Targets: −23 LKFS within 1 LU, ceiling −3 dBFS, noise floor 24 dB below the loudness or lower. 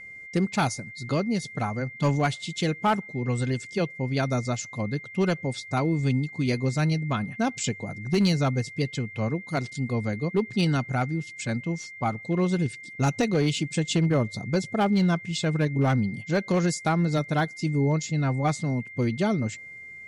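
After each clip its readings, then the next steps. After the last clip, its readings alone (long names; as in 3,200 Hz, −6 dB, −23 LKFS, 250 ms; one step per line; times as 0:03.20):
share of clipped samples 0.5%; peaks flattened at −16.0 dBFS; interfering tone 2,100 Hz; level of the tone −40 dBFS; integrated loudness −26.5 LKFS; sample peak −16.0 dBFS; target loudness −23.0 LKFS
→ clipped peaks rebuilt −16 dBFS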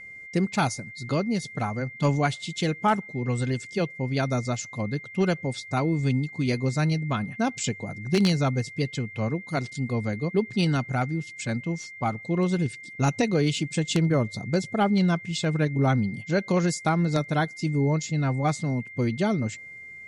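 share of clipped samples 0.0%; interfering tone 2,100 Hz; level of the tone −40 dBFS
→ notch filter 2,100 Hz, Q 30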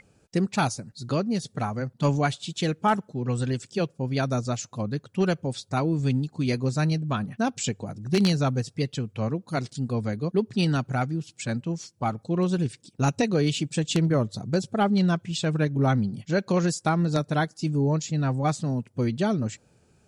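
interfering tone none found; integrated loudness −26.5 LKFS; sample peak −7.0 dBFS; target loudness −23.0 LKFS
→ level +3.5 dB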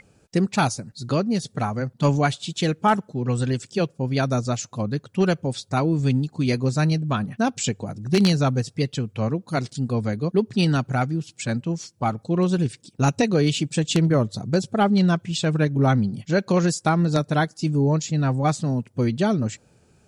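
integrated loudness −23.0 LKFS; sample peak −3.5 dBFS; background noise floor −60 dBFS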